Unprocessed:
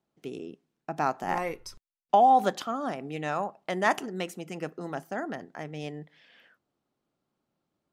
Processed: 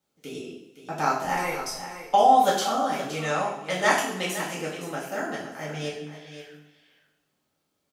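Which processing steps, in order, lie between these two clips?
high shelf 2600 Hz +10.5 dB; echo 0.517 s -11.5 dB; two-slope reverb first 0.54 s, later 1.9 s, DRR -7 dB; gain -5 dB

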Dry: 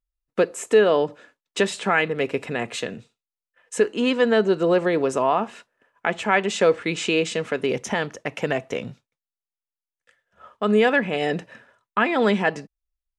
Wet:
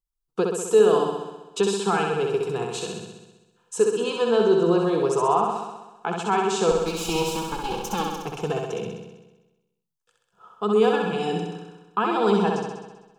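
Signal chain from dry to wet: 6.71–8.23 minimum comb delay 3.6 ms; fixed phaser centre 390 Hz, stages 8; flutter echo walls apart 11.1 m, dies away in 1.1 s

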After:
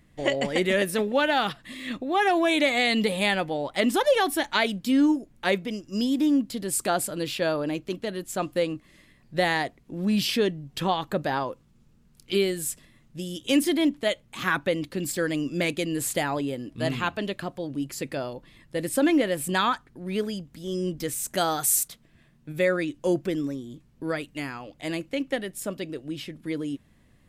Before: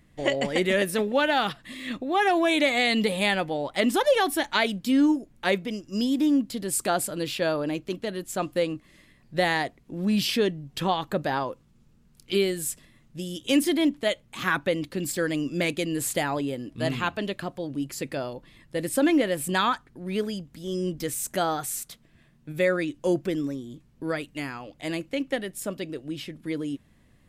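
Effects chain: 21.37–21.88 high shelf 4200 Hz +11.5 dB

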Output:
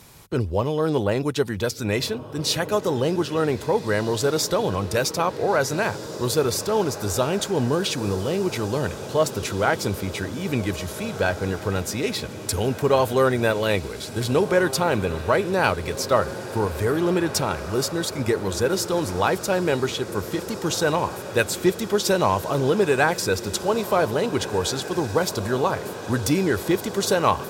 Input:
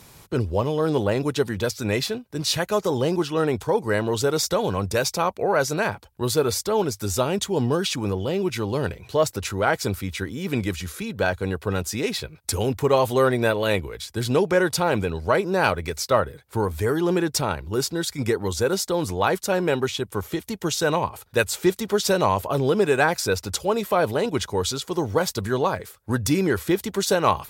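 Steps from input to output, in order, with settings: diffused feedback echo 1.751 s, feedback 67%, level -13 dB

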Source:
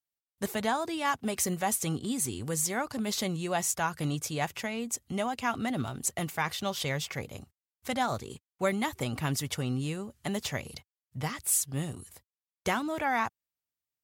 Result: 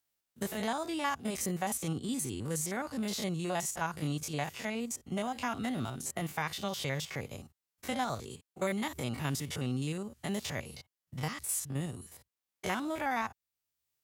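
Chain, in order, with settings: stepped spectrum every 50 ms; three-band squash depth 40%; gain -2 dB

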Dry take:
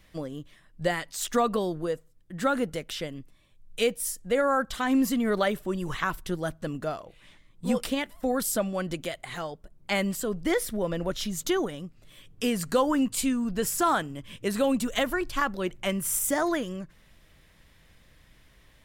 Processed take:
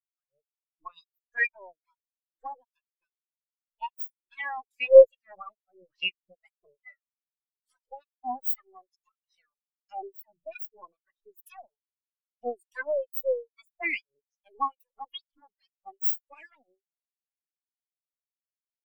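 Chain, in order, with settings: harmonic tremolo 2.4 Hz, depth 100%, crossover 720 Hz; full-wave rectifier; in parallel at -1.5 dB: compressor, threshold -39 dBFS, peak gain reduction 17 dB; on the sum: tilt +3.5 dB/oct; spectral expander 4:1; gain +4.5 dB

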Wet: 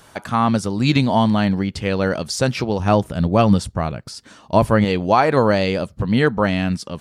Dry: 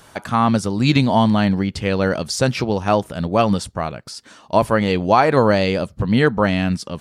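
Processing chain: 2.79–4.85 low shelf 220 Hz +9 dB; gain -1 dB

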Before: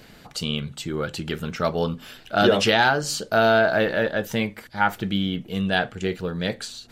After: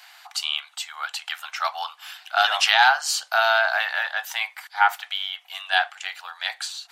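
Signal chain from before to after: Chebyshev high-pass 730 Hz, order 6; gain +4 dB

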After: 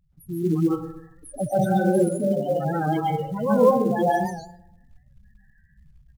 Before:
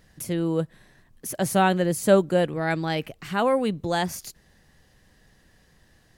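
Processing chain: random spectral dropouts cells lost 30%; 3.47–4.03 high shelf 2100 Hz +11.5 dB; limiter -15 dBFS, peak gain reduction 10 dB; 0.48–1.54 dynamic EQ 950 Hz, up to +4 dB, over -44 dBFS, Q 0.75; 2.07–2.6 compressor 5:1, threshold -26 dBFS, peak gain reduction 6 dB; loudest bins only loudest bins 4; speakerphone echo 0.11 s, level -26 dB; reverb RT60 0.75 s, pre-delay 0.118 s, DRR -7.5 dB; AGC gain up to 5.5 dB; short-mantissa float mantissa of 4-bit; record warp 78 rpm, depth 100 cents; gain -4 dB

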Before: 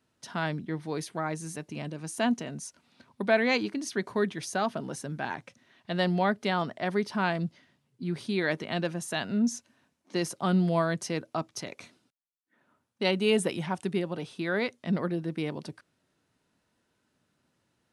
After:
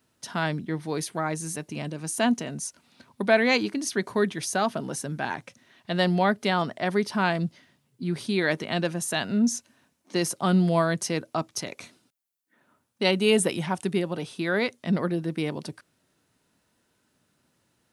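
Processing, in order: high shelf 8000 Hz +9 dB; gain +3.5 dB

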